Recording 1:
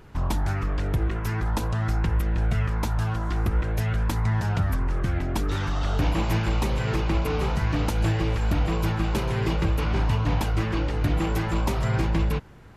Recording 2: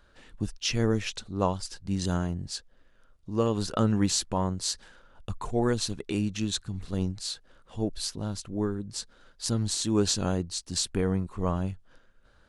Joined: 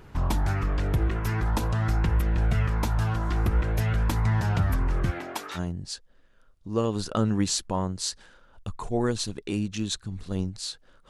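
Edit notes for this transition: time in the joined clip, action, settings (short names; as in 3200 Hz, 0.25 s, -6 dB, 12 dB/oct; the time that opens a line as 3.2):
recording 1
5.1–5.6 HPF 260 Hz -> 1100 Hz
5.57 switch to recording 2 from 2.19 s, crossfade 0.06 s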